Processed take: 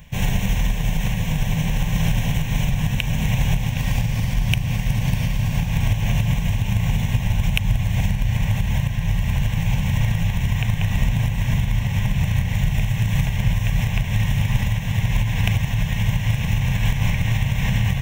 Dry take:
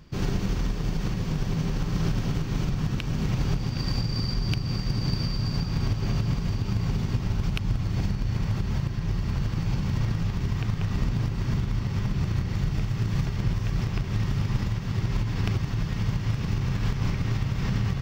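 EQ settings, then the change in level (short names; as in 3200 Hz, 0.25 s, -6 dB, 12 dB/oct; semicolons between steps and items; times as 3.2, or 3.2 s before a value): high shelf 2600 Hz +12 dB; fixed phaser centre 1300 Hz, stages 6; +7.5 dB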